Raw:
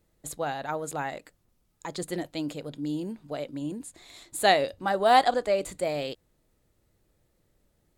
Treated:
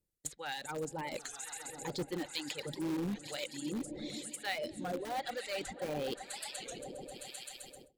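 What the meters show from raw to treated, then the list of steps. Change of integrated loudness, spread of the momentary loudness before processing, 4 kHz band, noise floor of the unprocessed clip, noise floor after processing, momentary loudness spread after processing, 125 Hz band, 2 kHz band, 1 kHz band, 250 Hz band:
-12.0 dB, 18 LU, -6.5 dB, -71 dBFS, -60 dBFS, 8 LU, -5.5 dB, -9.5 dB, -16.0 dB, -5.5 dB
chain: reverse; compressor 4:1, threshold -40 dBFS, peak gain reduction 20.5 dB; reverse; pre-emphasis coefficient 0.8; swelling echo 0.13 s, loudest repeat 5, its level -14.5 dB; harmonic tremolo 1 Hz, depth 70%, crossover 820 Hz; reverb removal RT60 1.5 s; AGC gain up to 4 dB; treble ducked by the level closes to 2300 Hz, closed at -46.5 dBFS; bell 1100 Hz -8.5 dB 0.58 oct; in parallel at -11 dB: wrapped overs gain 48.5 dB; on the sum: Butterworth band-stop 660 Hz, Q 6; gate with hold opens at -58 dBFS; record warp 33 1/3 rpm, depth 160 cents; gain +16 dB

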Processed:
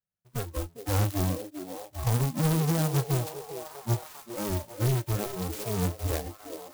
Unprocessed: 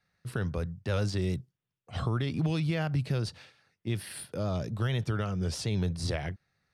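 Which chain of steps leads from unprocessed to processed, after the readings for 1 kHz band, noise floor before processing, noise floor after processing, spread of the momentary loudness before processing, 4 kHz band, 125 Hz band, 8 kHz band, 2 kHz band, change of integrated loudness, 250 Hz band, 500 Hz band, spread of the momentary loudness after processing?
+5.5 dB, under -85 dBFS, -60 dBFS, 9 LU, 0.0 dB, +2.0 dB, +7.5 dB, -1.5 dB, +2.0 dB, +1.5 dB, +2.5 dB, 13 LU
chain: half-waves squared off; high shelf 7200 Hz +9.5 dB; spectral noise reduction 25 dB; air absorption 120 m; delay with a stepping band-pass 0.401 s, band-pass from 380 Hz, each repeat 0.7 oct, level -4 dB; clock jitter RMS 0.11 ms

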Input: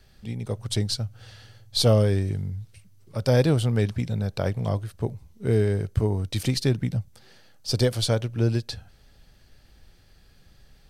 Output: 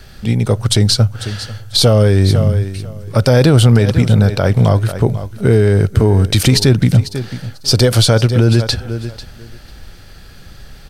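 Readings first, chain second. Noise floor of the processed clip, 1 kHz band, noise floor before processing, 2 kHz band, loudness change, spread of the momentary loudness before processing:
-38 dBFS, +13.0 dB, -56 dBFS, +14.0 dB, +12.5 dB, 14 LU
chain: bell 1400 Hz +5 dB 0.31 oct; feedback echo 0.494 s, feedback 16%, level -17 dB; maximiser +18.5 dB; gain -1 dB

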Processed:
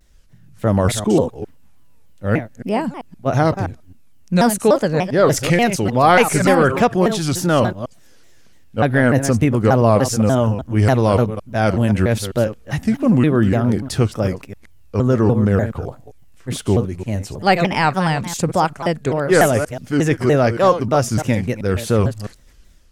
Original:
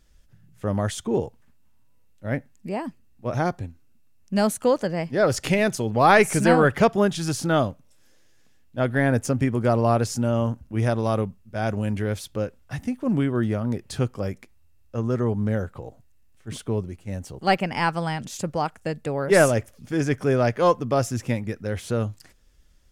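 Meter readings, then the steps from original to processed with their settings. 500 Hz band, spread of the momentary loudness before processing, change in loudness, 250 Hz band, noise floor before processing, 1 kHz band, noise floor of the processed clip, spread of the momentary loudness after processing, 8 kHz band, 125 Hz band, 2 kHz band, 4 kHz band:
+6.0 dB, 14 LU, +6.5 dB, +7.5 dB, -55 dBFS, +6.0 dB, -45 dBFS, 11 LU, +7.0 dB, +8.0 dB, +5.0 dB, +7.0 dB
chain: reverse delay 0.131 s, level -11 dB; in parallel at -3 dB: limiter -16 dBFS, peak gain reduction 11 dB; on the sum: AGC gain up to 5 dB; shaped vibrato saw down 3.4 Hz, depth 250 cents

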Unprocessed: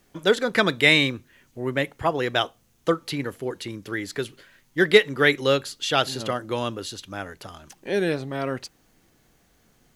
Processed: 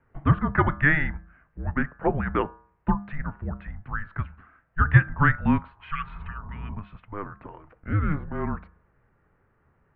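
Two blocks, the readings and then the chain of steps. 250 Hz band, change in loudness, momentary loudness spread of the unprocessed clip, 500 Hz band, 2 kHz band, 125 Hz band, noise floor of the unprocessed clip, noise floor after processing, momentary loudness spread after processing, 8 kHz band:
0.0 dB, -2.5 dB, 18 LU, -11.5 dB, -3.0 dB, +8.5 dB, -62 dBFS, -67 dBFS, 17 LU, under -40 dB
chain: de-hum 125.4 Hz, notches 16; spectral repair 5.78–6.72, 360–1400 Hz both; mistuned SSB -300 Hz 160–2200 Hz

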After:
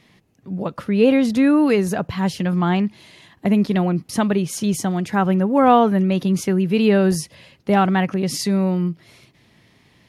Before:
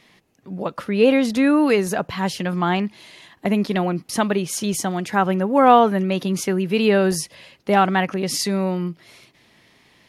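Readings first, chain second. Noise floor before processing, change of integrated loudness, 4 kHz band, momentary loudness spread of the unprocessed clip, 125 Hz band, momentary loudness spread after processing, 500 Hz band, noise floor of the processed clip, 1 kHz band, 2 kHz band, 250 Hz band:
-58 dBFS, +1.0 dB, -2.5 dB, 12 LU, +4.5 dB, 11 LU, -0.5 dB, -57 dBFS, -1.5 dB, -2.5 dB, +3.0 dB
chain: bell 95 Hz +10 dB 2.8 oct; gain -2.5 dB

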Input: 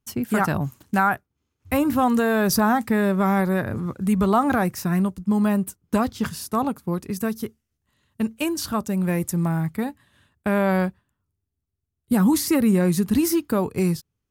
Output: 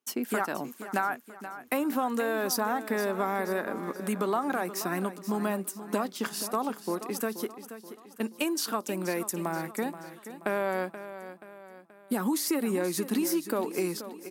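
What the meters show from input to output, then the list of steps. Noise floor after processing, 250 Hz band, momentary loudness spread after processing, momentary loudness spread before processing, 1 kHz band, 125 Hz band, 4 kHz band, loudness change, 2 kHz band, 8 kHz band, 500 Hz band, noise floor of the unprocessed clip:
-53 dBFS, -10.5 dB, 14 LU, 9 LU, -7.0 dB, -16.5 dB, -3.5 dB, -8.5 dB, -6.0 dB, -3.5 dB, -5.0 dB, -80 dBFS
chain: HPF 270 Hz 24 dB/oct; compressor 4:1, threshold -26 dBFS, peak gain reduction 10.5 dB; on a send: feedback echo 0.479 s, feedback 46%, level -12.5 dB

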